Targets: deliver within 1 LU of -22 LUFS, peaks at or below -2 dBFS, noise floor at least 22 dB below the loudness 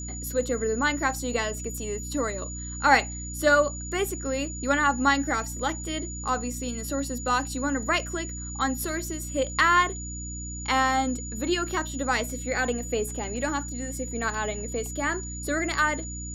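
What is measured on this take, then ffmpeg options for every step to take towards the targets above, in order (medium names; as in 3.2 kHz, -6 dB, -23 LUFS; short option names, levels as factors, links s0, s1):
hum 60 Hz; highest harmonic 300 Hz; hum level -35 dBFS; steady tone 6.9 kHz; tone level -37 dBFS; loudness -27.0 LUFS; peak level -4.5 dBFS; loudness target -22.0 LUFS
-> -af "bandreject=f=60:t=h:w=4,bandreject=f=120:t=h:w=4,bandreject=f=180:t=h:w=4,bandreject=f=240:t=h:w=4,bandreject=f=300:t=h:w=4"
-af "bandreject=f=6900:w=30"
-af "volume=1.78,alimiter=limit=0.794:level=0:latency=1"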